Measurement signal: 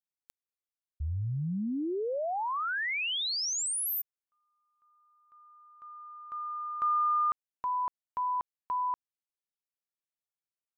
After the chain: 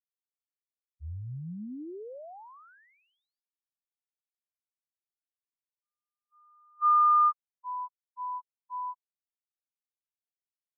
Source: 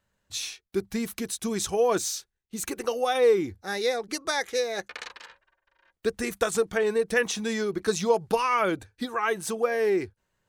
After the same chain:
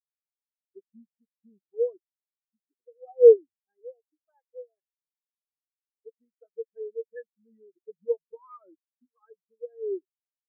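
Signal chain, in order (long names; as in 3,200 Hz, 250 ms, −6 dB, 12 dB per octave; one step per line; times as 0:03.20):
automatic gain control gain up to 7 dB
high-frequency loss of the air 180 metres
every bin expanded away from the loudest bin 4 to 1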